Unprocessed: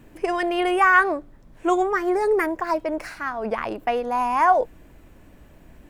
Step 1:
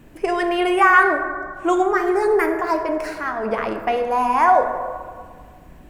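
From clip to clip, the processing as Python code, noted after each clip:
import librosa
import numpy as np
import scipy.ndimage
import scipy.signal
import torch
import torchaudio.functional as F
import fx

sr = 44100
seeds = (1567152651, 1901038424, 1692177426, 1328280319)

y = fx.rev_plate(x, sr, seeds[0], rt60_s=1.8, hf_ratio=0.4, predelay_ms=0, drr_db=5.0)
y = y * librosa.db_to_amplitude(2.0)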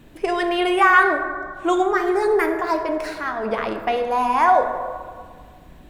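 y = fx.peak_eq(x, sr, hz=3700.0, db=8.5, octaves=0.46)
y = y * librosa.db_to_amplitude(-1.0)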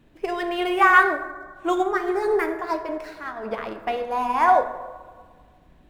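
y = scipy.ndimage.median_filter(x, 5, mode='constant')
y = fx.upward_expand(y, sr, threshold_db=-29.0, expansion=1.5)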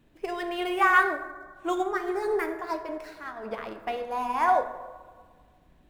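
y = fx.high_shelf(x, sr, hz=5600.0, db=4.5)
y = y * librosa.db_to_amplitude(-5.5)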